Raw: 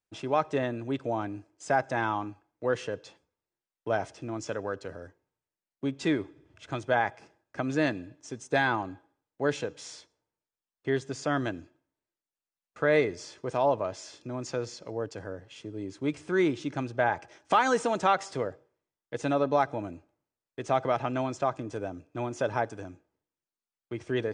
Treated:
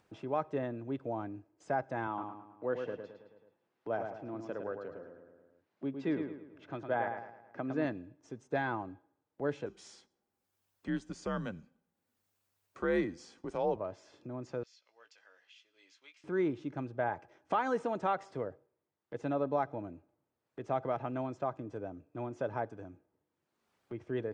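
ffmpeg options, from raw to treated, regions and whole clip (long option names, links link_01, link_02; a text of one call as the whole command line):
ffmpeg -i in.wav -filter_complex "[0:a]asettb=1/sr,asplit=3[link_01][link_02][link_03];[link_01]atrim=end=2.074[link_04];[link_02]atrim=start=2.07:end=7.85,asetpts=PTS-STARTPTS,afade=type=in:duration=0.004:curve=qsin,afade=type=out:start_time=5.776:duration=0.004:curve=qsin,highpass=140,lowpass=5200,asplit=2[link_05][link_06];[link_06]adelay=108,lowpass=frequency=4100:poles=1,volume=-6dB,asplit=2[link_07][link_08];[link_08]adelay=108,lowpass=frequency=4100:poles=1,volume=0.41,asplit=2[link_09][link_10];[link_10]adelay=108,lowpass=frequency=4100:poles=1,volume=0.41,asplit=2[link_11][link_12];[link_12]adelay=108,lowpass=frequency=4100:poles=1,volume=0.41,asplit=2[link_13][link_14];[link_14]adelay=108,lowpass=frequency=4100:poles=1,volume=0.41[link_15];[link_05][link_07][link_09][link_11][link_13][link_15]amix=inputs=6:normalize=0,atrim=end_sample=254898[link_16];[link_03]atrim=start=7.846[link_17];[link_04][link_16]acrossfade=duration=0.004:curve1=hsin:curve2=qsin[link_18];[link_18][link_17]acrossfade=duration=0.004:curve1=qsin:curve2=hsin,asettb=1/sr,asplit=3[link_19][link_20][link_21];[link_19]atrim=end=9.664[link_22];[link_20]atrim=start=9.66:end=13.76,asetpts=PTS-STARTPTS,afade=type=in:duration=0.004:curve=qsin,afade=type=out:start_time=4.096:duration=0.004:curve=qsin,aemphasis=mode=production:type=75fm,afreqshift=-98[link_23];[link_21]atrim=start=13.756[link_24];[link_22][link_23]acrossfade=duration=0.004:curve1=hsin:curve2=qsin[link_25];[link_25][link_24]acrossfade=duration=0.004:curve1=qsin:curve2=hsin,asettb=1/sr,asplit=3[link_26][link_27][link_28];[link_26]atrim=end=14.634[link_29];[link_27]atrim=start=14.63:end=16.24,asetpts=PTS-STARTPTS,afade=type=in:duration=0.004:curve=qsin,afade=type=out:start_time=1.606:duration=0.004:curve=qsin,asuperpass=centerf=4200:order=4:qfactor=0.89,asplit=2[link_30][link_31];[link_31]adelay=17,volume=-7dB[link_32];[link_30][link_32]amix=inputs=2:normalize=0,atrim=end_sample=71001[link_33];[link_28]atrim=start=16.236[link_34];[link_29][link_33]acrossfade=duration=0.004:curve1=hsin:curve2=qsin[link_35];[link_35][link_34]acrossfade=duration=0.004:curve1=qsin:curve2=hsin,highpass=75,acompressor=mode=upward:threshold=-38dB:ratio=2.5,lowpass=frequency=1100:poles=1,volume=-5.5dB" out.wav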